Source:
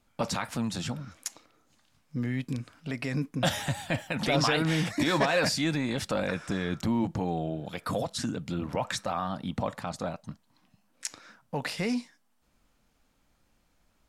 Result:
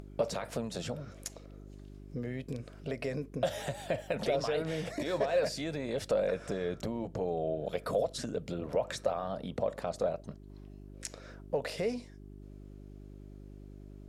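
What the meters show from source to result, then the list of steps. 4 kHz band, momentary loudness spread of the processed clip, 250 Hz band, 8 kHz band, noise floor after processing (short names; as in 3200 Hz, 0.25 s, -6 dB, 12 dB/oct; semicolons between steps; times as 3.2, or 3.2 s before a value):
-9.5 dB, 20 LU, -8.5 dB, -8.0 dB, -51 dBFS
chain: compressor, threshold -31 dBFS, peak gain reduction 11 dB; band shelf 510 Hz +12.5 dB 1 oct; buzz 50 Hz, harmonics 8, -48 dBFS -4 dB/oct; upward compressor, threshold -38 dBFS; gain -4 dB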